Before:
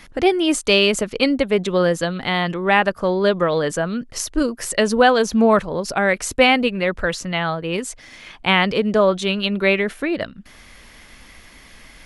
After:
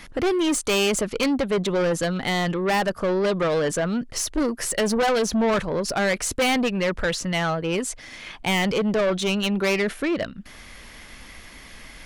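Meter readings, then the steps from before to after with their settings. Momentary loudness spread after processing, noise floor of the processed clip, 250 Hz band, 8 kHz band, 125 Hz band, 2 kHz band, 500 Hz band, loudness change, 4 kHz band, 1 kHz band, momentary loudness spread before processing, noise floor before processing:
21 LU, -44 dBFS, -3.5 dB, +0.5 dB, -2.0 dB, -6.0 dB, -4.5 dB, -4.5 dB, -5.0 dB, -6.0 dB, 9 LU, -46 dBFS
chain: saturation -19.5 dBFS, distortion -7 dB; trim +1.5 dB

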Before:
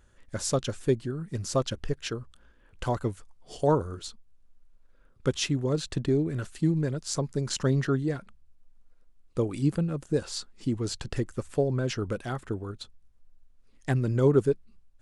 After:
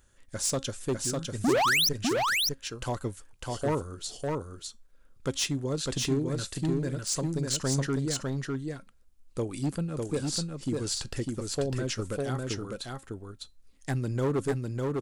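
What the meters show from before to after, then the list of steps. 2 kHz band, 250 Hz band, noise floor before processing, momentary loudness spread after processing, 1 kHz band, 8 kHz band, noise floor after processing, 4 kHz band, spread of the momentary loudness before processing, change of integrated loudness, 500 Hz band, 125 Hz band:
+7.5 dB, -1.5 dB, -59 dBFS, 14 LU, +3.0 dB, +5.5 dB, -58 dBFS, +6.5 dB, 12 LU, -1.0 dB, -3.0 dB, -3.0 dB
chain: treble shelf 4.2 kHz +11 dB; feedback comb 270 Hz, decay 0.21 s, harmonics all, mix 40%; painted sound rise, 1.44–1.89 s, 210–6200 Hz -15 dBFS; overload inside the chain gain 23 dB; delay 602 ms -3 dB

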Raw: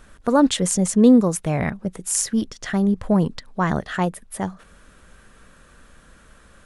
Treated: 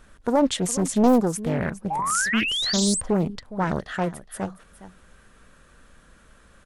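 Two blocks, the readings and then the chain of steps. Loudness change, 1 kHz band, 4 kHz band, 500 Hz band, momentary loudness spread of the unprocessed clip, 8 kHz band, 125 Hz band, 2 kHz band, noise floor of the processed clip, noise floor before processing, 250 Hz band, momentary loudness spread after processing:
-3.0 dB, 0.0 dB, +5.5 dB, -2.0 dB, 14 LU, -2.0 dB, -4.5 dB, +3.0 dB, -55 dBFS, -51 dBFS, -5.0 dB, 10 LU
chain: delay 413 ms -15.5 dB; painted sound rise, 1.90–3.01 s, 770–8800 Hz -22 dBFS; loudspeaker Doppler distortion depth 0.64 ms; trim -3.5 dB

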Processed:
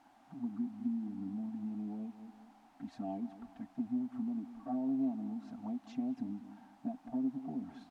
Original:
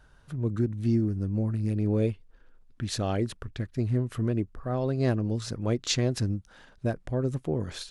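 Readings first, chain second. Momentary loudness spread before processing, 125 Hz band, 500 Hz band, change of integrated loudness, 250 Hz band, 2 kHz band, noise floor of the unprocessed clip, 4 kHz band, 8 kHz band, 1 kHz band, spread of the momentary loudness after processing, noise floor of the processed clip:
8 LU, -25.5 dB, -20.0 dB, -10.5 dB, -6.0 dB, under -20 dB, -58 dBFS, under -25 dB, under -30 dB, -8.5 dB, 12 LU, -64 dBFS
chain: touch-sensitive flanger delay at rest 10.4 ms, full sweep at -23 dBFS; comb 4.4 ms, depth 85%; harmonic-percussive split percussive -3 dB; on a send: feedback delay 198 ms, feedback 33%, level -17.5 dB; on the sum: compression 6:1, threshold -31 dBFS, peak gain reduction 11.5 dB; word length cut 8-bit, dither triangular; two resonant band-passes 460 Hz, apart 1.5 oct; trim +4.5 dB

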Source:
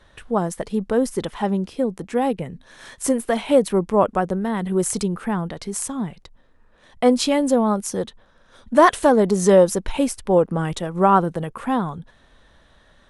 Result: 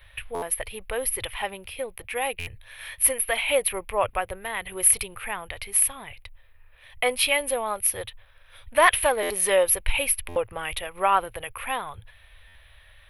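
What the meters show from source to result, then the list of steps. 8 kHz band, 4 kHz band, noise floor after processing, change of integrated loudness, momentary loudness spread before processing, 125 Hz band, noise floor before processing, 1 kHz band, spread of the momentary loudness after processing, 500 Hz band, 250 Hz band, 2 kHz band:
+6.5 dB, +2.5 dB, -53 dBFS, -4.0 dB, 12 LU, -16.5 dB, -55 dBFS, -5.0 dB, 15 LU, -8.0 dB, -22.0 dB, +4.0 dB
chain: FFT filter 110 Hz 0 dB, 160 Hz -29 dB, 240 Hz -29 dB, 550 Hz -10 dB, 850 Hz -9 dB, 1.5 kHz -6 dB, 2.4 kHz +9 dB, 7.3 kHz -21 dB, 11 kHz +13 dB; buffer glitch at 0.34/2.39/9.22/10.28/12.47 s, samples 512, times 6; trim +3.5 dB

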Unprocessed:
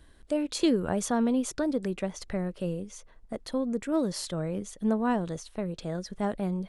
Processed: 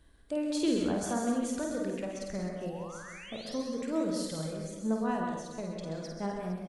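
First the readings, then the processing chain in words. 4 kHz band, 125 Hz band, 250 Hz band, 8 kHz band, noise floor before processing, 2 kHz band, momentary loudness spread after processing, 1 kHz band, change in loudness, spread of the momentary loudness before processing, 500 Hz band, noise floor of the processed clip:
-3.0 dB, -5.0 dB, -4.0 dB, -3.0 dB, -56 dBFS, -2.5 dB, 9 LU, -2.5 dB, -4.0 dB, 10 LU, -3.5 dB, -49 dBFS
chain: reverb removal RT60 1.7 s; painted sound rise, 2.63–3.58 s, 640–6400 Hz -45 dBFS; on a send: reverse bouncing-ball echo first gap 50 ms, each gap 1.6×, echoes 5; on the sum: gated-style reverb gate 210 ms rising, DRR 3.5 dB; trim -6.5 dB

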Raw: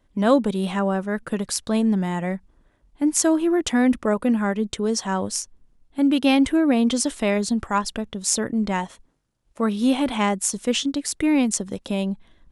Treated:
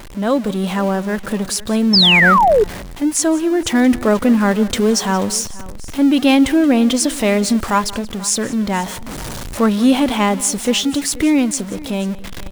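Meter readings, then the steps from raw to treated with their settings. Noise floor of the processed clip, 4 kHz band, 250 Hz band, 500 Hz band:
-29 dBFS, +12.0 dB, +5.5 dB, +6.5 dB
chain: jump at every zero crossing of -28.5 dBFS; level rider gain up to 11.5 dB; on a send: multi-tap echo 177/484 ms -19.5/-19.5 dB; on the sum: painted sound fall, 1.93–2.64 s, 390–5500 Hz -10 dBFS; trim -1 dB

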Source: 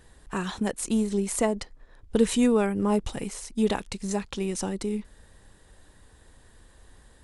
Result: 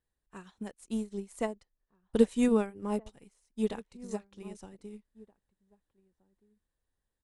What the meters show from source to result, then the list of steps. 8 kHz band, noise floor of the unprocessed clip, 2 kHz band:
-17.0 dB, -57 dBFS, -10.0 dB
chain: echo from a far wall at 270 m, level -9 dB; upward expansion 2.5:1, over -38 dBFS

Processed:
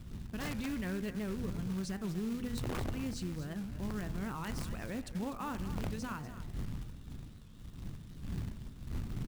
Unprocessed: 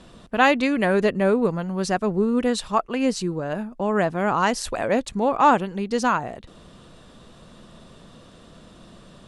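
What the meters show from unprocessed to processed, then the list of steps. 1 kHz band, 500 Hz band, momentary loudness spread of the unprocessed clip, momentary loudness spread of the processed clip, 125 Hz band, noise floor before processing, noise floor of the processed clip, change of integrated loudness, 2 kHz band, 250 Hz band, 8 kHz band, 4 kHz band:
-24.0 dB, -22.5 dB, 9 LU, 11 LU, -6.0 dB, -49 dBFS, -50 dBFS, -17.5 dB, -20.0 dB, -13.5 dB, -14.0 dB, -15.5 dB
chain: wind noise 200 Hz -31 dBFS; amplifier tone stack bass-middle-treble 6-0-2; integer overflow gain 30 dB; treble shelf 2.3 kHz -9.5 dB; peak limiter -39 dBFS, peak gain reduction 9 dB; delay 242 ms -12.5 dB; short-mantissa float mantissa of 2-bit; de-hum 81.36 Hz, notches 33; warped record 78 rpm, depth 160 cents; trim +8.5 dB

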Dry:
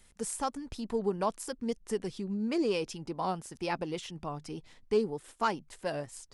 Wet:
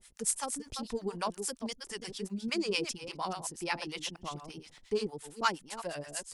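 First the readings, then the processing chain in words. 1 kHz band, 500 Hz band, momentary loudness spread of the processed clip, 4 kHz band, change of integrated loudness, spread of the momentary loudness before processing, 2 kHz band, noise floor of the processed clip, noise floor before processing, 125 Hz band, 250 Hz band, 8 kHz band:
-2.0 dB, -5.0 dB, 9 LU, +5.5 dB, -1.5 dB, 9 LU, +3.5 dB, -60 dBFS, -61 dBFS, -4.5 dB, -4.5 dB, +6.5 dB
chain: chunks repeated in reverse 208 ms, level -8 dB; harmonic tremolo 8.5 Hz, depth 100%, crossover 650 Hz; tilt shelf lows -6 dB, about 1.5 kHz; trim +4.5 dB

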